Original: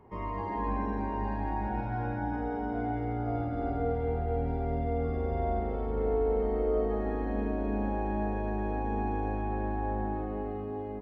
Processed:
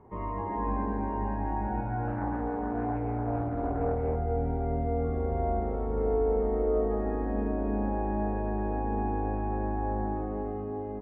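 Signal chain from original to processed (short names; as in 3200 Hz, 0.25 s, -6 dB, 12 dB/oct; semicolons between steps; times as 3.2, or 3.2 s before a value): LPF 1600 Hz 12 dB/oct; 2.07–4.16 Doppler distortion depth 0.33 ms; gain +1.5 dB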